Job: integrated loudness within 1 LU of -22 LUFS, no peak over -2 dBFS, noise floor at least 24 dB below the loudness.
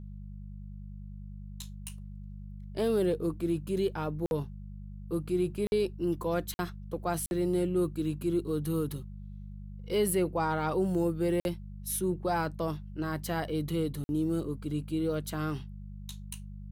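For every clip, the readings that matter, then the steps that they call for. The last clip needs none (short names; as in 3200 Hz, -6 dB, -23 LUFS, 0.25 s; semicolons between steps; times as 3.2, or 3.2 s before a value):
dropouts 6; longest dropout 51 ms; hum 50 Hz; harmonics up to 200 Hz; hum level -40 dBFS; loudness -31.5 LUFS; peak -18.0 dBFS; loudness target -22.0 LUFS
-> interpolate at 4.26/5.67/6.54/7.26/11.4/14.04, 51 ms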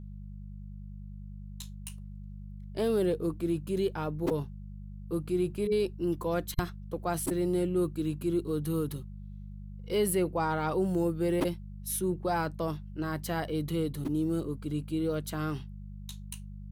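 dropouts 0; hum 50 Hz; harmonics up to 200 Hz; hum level -40 dBFS
-> de-hum 50 Hz, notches 4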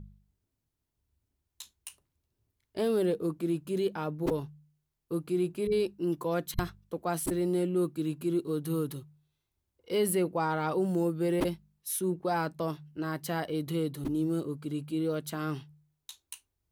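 hum none; loudness -31.5 LUFS; peak -14.5 dBFS; loudness target -22.0 LUFS
-> gain +9.5 dB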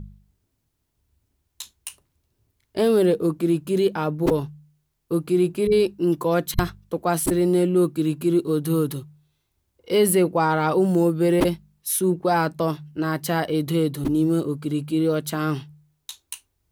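loudness -22.0 LUFS; peak -5.0 dBFS; noise floor -74 dBFS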